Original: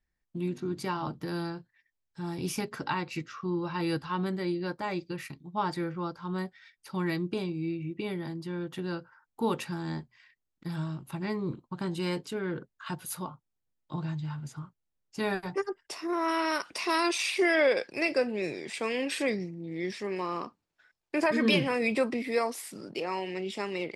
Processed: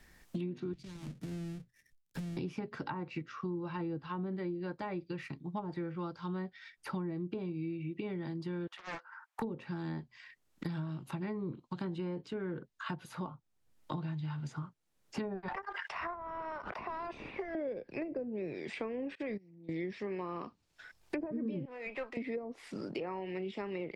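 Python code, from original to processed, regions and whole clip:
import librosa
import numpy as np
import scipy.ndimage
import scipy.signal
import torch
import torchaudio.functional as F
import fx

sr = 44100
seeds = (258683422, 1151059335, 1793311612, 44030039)

y = fx.chain(x, sr, fx.halfwave_hold(),
    fx.tone_stack(knobs='10-0-1'),
    fx.band_squash(depth_pct=70), at=(0.73, 2.37))
y = fx.chain(y, sr, fx.highpass(hz=850.0, slope=24),
    fx.doppler_dist(depth_ms=0.99), at=(8.67, 9.42))
y = fx.chain(y, sr, fx.highpass(hz=810.0, slope=24),
    fx.leveller(passes=2),
    fx.pre_swell(db_per_s=37.0), at=(15.48, 17.55))
y = fx.chain(y, sr, fx.level_steps(step_db=11),
    fx.upward_expand(threshold_db=-43.0, expansion=2.5), at=(19.15, 19.69))
y = fx.chain(y, sr, fx.median_filter(points=9),
    fx.highpass(hz=760.0, slope=12),
    fx.tube_stage(drive_db=24.0, bias=0.45), at=(21.65, 22.17))
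y = fx.env_lowpass_down(y, sr, base_hz=430.0, full_db=-24.5)
y = fx.dynamic_eq(y, sr, hz=1100.0, q=0.78, threshold_db=-46.0, ratio=4.0, max_db=-3)
y = fx.band_squash(y, sr, depth_pct=100)
y = y * 10.0 ** (-5.0 / 20.0)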